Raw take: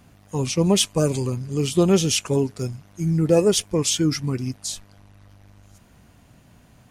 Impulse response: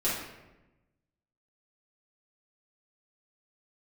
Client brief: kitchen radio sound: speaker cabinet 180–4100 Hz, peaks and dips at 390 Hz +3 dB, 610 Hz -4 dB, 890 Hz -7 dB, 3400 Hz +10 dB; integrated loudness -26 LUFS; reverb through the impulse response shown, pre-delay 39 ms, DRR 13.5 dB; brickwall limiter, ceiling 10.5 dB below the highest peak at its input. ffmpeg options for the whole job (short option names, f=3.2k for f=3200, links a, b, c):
-filter_complex "[0:a]alimiter=limit=-16dB:level=0:latency=1,asplit=2[a][b];[1:a]atrim=start_sample=2205,adelay=39[c];[b][c]afir=irnorm=-1:irlink=0,volume=-22.5dB[d];[a][d]amix=inputs=2:normalize=0,highpass=180,equalizer=f=390:t=q:w=4:g=3,equalizer=f=610:t=q:w=4:g=-4,equalizer=f=890:t=q:w=4:g=-7,equalizer=f=3.4k:t=q:w=4:g=10,lowpass=f=4.1k:w=0.5412,lowpass=f=4.1k:w=1.3066,volume=0.5dB"